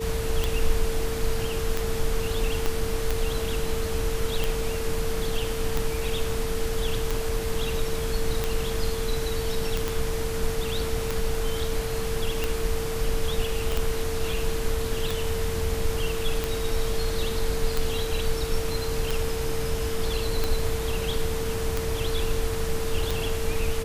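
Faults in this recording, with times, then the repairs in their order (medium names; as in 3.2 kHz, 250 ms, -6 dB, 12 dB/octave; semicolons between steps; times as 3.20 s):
tick 45 rpm
whine 450 Hz -30 dBFS
2.66 s: pop -11 dBFS
9.88 s: pop
13.72 s: pop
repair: de-click; band-stop 450 Hz, Q 30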